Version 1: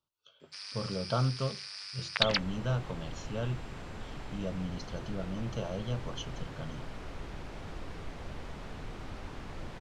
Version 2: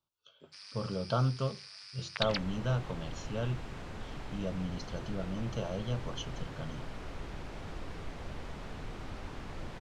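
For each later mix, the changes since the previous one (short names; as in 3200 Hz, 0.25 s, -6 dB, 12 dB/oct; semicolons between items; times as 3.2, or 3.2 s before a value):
first sound -6.5 dB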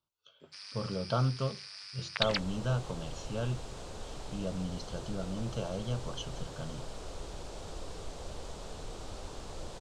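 first sound +3.0 dB; second sound: add graphic EQ 125/250/500/2000/4000/8000 Hz -4/-5/+5/-9/+4/+12 dB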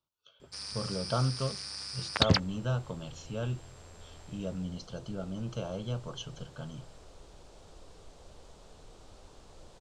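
first sound: remove band-pass 2500 Hz, Q 1.2; second sound -10.5 dB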